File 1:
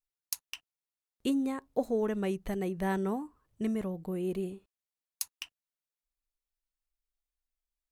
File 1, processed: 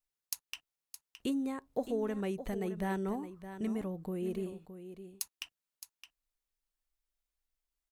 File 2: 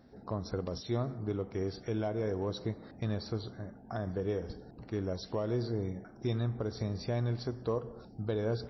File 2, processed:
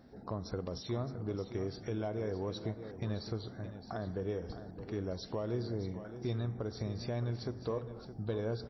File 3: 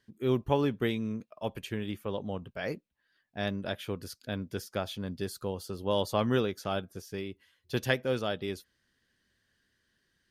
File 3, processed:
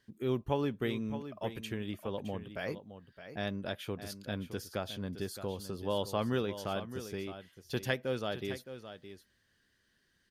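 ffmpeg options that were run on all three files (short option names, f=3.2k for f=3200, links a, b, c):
-filter_complex "[0:a]asplit=2[a][b];[b]acompressor=threshold=-40dB:ratio=6,volume=2.5dB[c];[a][c]amix=inputs=2:normalize=0,aecho=1:1:616:0.266,volume=-6.5dB"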